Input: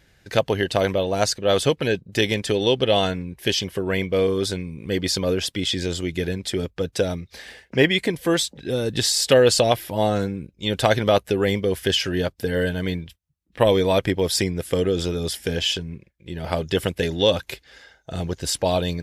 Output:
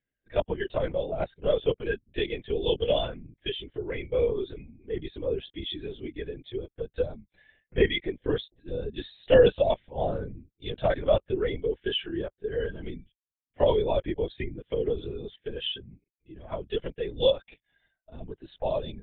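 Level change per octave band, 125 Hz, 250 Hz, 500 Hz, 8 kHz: -10.5 dB, -10.5 dB, -5.0 dB, under -40 dB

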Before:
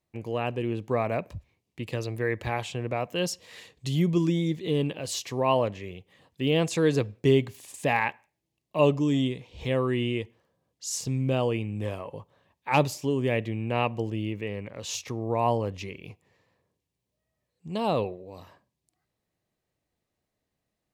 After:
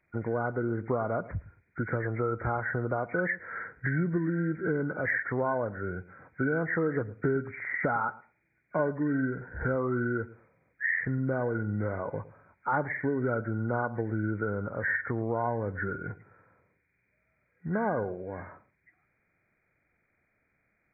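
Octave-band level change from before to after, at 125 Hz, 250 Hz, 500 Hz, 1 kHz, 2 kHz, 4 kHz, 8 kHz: -3.5 dB, -3.0 dB, -3.5 dB, -2.5 dB, +4.0 dB, under -40 dB, under -40 dB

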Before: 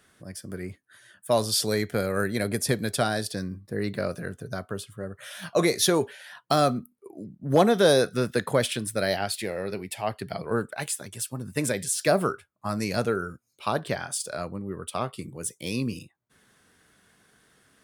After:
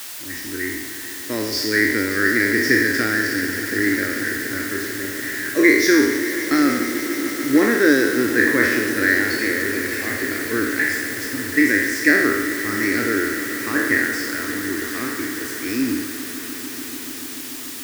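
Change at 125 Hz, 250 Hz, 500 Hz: -3.5, +10.5, +2.5 dB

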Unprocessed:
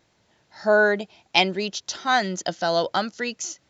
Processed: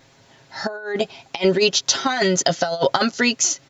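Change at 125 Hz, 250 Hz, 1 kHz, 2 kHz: +6.0, +6.5, -0.5, -1.0 dB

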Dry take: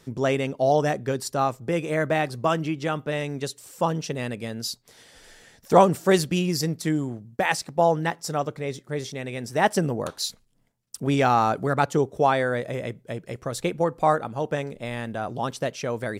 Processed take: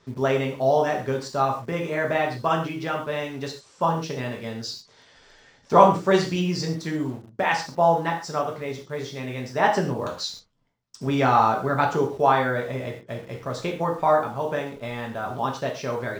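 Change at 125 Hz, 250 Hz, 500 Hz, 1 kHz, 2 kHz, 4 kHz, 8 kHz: -1.0, -1.0, +0.5, +2.5, +1.0, -0.5, -6.0 dB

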